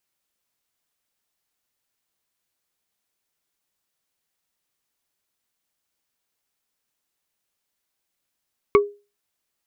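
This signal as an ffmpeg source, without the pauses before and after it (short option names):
-f lavfi -i "aevalsrc='0.398*pow(10,-3*t/0.3)*sin(2*PI*409*t)+0.266*pow(10,-3*t/0.089)*sin(2*PI*1127.6*t)+0.178*pow(10,-3*t/0.04)*sin(2*PI*2210.2*t)':d=0.45:s=44100"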